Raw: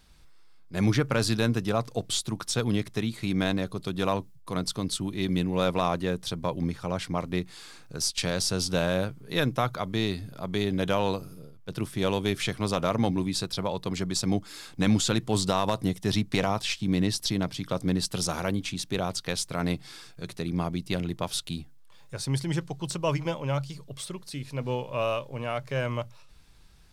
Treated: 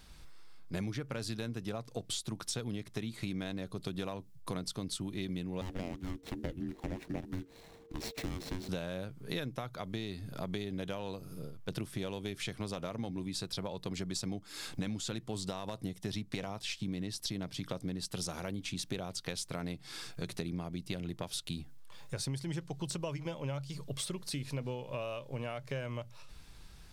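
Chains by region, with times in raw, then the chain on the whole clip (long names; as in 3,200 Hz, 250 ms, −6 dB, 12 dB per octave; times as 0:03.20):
0:05.61–0:08.69: running median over 25 samples + low-shelf EQ 200 Hz −11.5 dB + frequency shifter −460 Hz
whole clip: downward compressor 12 to 1, threshold −37 dBFS; dynamic equaliser 1,100 Hz, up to −4 dB, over −54 dBFS, Q 1.4; level +3 dB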